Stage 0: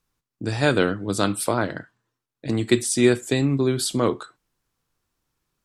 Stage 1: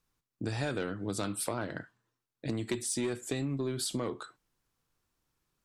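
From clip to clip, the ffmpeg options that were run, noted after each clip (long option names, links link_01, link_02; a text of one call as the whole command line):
ffmpeg -i in.wav -af "asoftclip=type=tanh:threshold=-12dB,acompressor=threshold=-27dB:ratio=6,volume=-3.5dB" out.wav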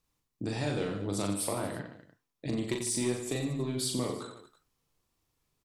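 ffmpeg -i in.wav -filter_complex "[0:a]equalizer=frequency=1500:width_type=o:width=0.36:gain=-7.5,asplit=2[link_01][link_02];[link_02]aecho=0:1:40|90|152.5|230.6|328.3:0.631|0.398|0.251|0.158|0.1[link_03];[link_01][link_03]amix=inputs=2:normalize=0" out.wav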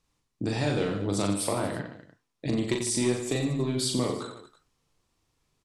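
ffmpeg -i in.wav -af "lowpass=9100,volume=5dB" out.wav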